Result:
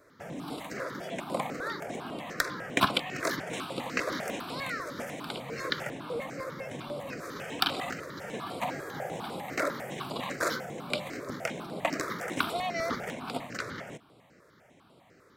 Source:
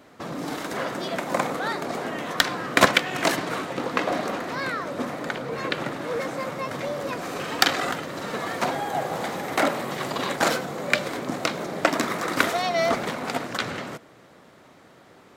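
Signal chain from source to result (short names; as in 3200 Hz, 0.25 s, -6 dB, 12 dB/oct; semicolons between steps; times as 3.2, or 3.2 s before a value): 3.53–5.9 high shelf 2400 Hz +8.5 dB; step phaser 10 Hz 810–6200 Hz; gain -5 dB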